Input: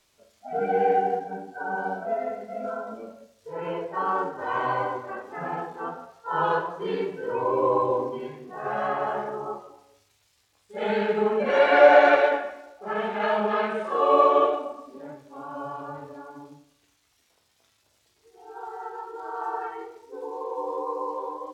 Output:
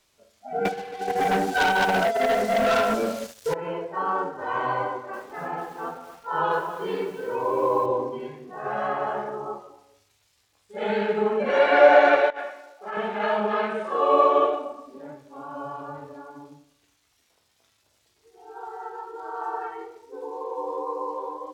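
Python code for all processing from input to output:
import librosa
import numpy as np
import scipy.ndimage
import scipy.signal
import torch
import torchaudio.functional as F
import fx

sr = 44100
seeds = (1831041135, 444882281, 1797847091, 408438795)

y = fx.chain(x, sr, fx.over_compress(threshold_db=-31.0, ratio=-0.5),
    fx.leveller(passes=3),
    fx.high_shelf(hz=2100.0, db=9.5), at=(0.65, 3.54))
y = fx.chain(y, sr, fx.low_shelf(hz=94.0, db=-11.0),
    fx.echo_crushed(ms=254, feedback_pct=35, bits=7, wet_db=-12.0), at=(4.88, 7.86))
y = fx.chain(y, sr, fx.highpass(hz=660.0, slope=6),
    fx.over_compress(threshold_db=-32.0, ratio=-0.5), at=(12.3, 12.97))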